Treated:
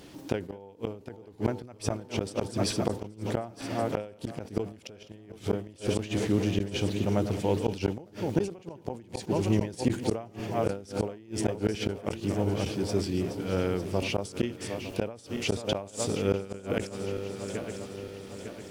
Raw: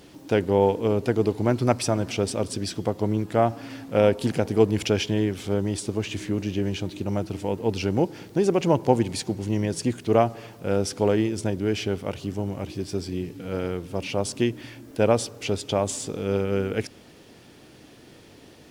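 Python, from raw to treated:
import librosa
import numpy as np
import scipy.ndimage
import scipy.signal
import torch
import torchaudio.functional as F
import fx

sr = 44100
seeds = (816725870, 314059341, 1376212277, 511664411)

y = fx.reverse_delay_fb(x, sr, ms=452, feedback_pct=68, wet_db=-10.5)
y = fx.gate_flip(y, sr, shuts_db=-13.0, range_db=-29)
y = fx.sustainer(y, sr, db_per_s=130.0)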